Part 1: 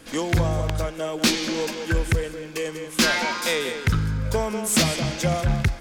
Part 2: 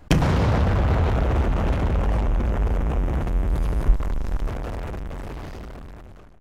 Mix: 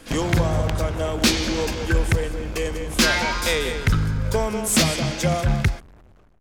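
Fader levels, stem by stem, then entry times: +1.5, −8.5 decibels; 0.00, 0.00 seconds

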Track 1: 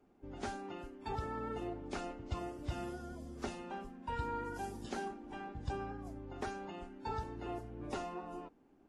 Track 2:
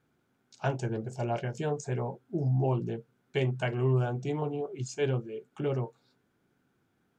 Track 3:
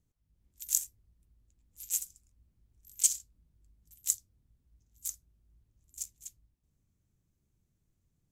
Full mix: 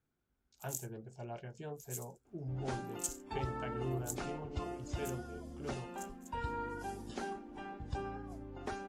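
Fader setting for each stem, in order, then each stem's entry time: −0.5, −13.5, −13.0 decibels; 2.25, 0.00, 0.00 seconds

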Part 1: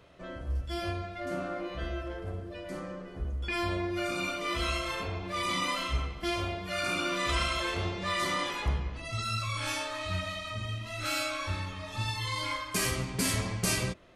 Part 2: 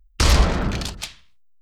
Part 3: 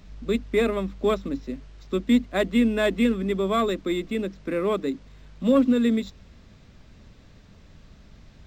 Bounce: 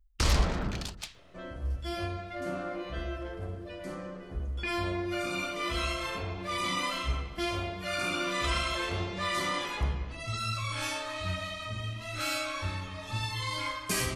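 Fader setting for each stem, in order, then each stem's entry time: −0.5 dB, −9.5 dB, muted; 1.15 s, 0.00 s, muted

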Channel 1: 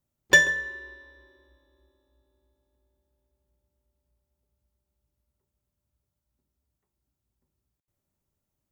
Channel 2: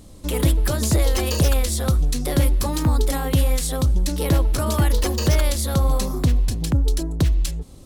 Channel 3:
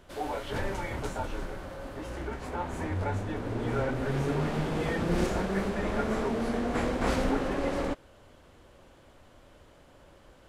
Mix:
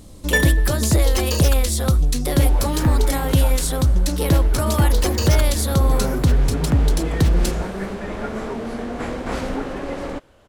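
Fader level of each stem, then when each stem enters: −3.0, +2.0, +2.0 decibels; 0.00, 0.00, 2.25 seconds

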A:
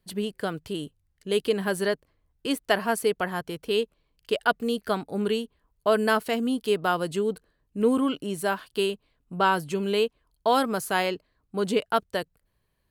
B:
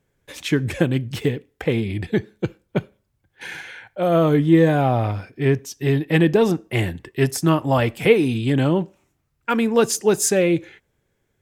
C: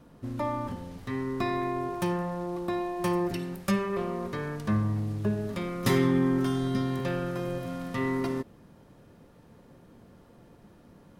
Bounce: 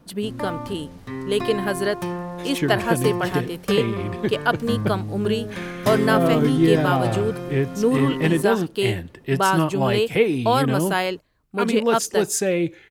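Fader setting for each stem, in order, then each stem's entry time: +2.5, −3.5, +1.0 decibels; 0.00, 2.10, 0.00 seconds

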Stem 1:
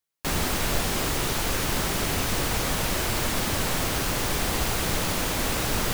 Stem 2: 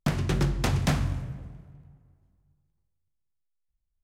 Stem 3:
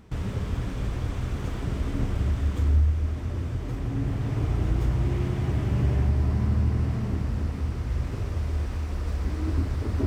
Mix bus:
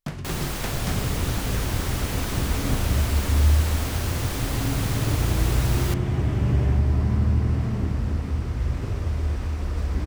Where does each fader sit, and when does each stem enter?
−5.0, −6.0, +2.5 decibels; 0.00, 0.00, 0.70 seconds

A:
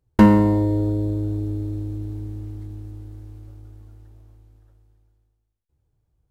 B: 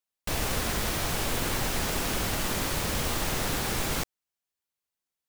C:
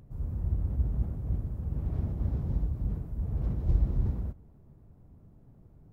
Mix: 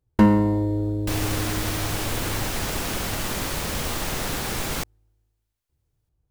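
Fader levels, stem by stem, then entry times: −3.5 dB, +1.5 dB, muted; 0.00 s, 0.80 s, muted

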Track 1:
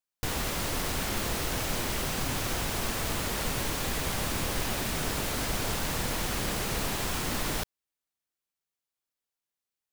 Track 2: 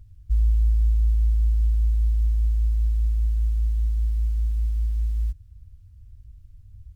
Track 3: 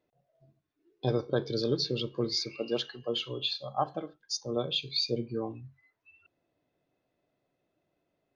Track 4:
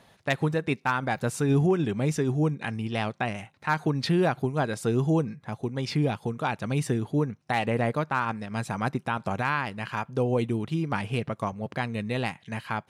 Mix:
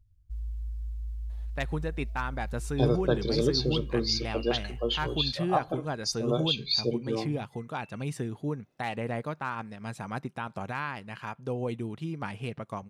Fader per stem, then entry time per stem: muted, −16.0 dB, +2.5 dB, −7.0 dB; muted, 0.00 s, 1.75 s, 1.30 s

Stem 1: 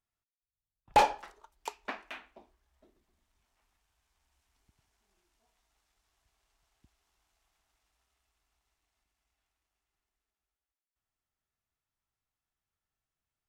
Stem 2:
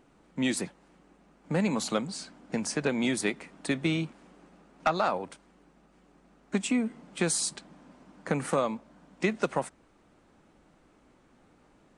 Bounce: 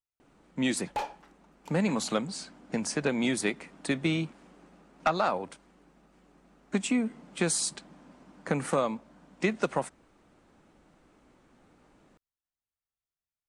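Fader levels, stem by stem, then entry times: −10.0, 0.0 decibels; 0.00, 0.20 seconds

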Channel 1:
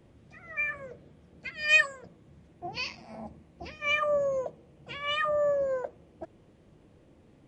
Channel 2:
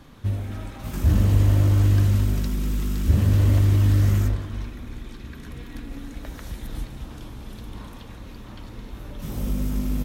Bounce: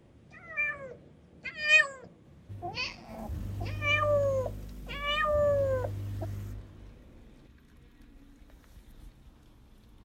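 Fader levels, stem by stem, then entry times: 0.0, −19.5 decibels; 0.00, 2.25 seconds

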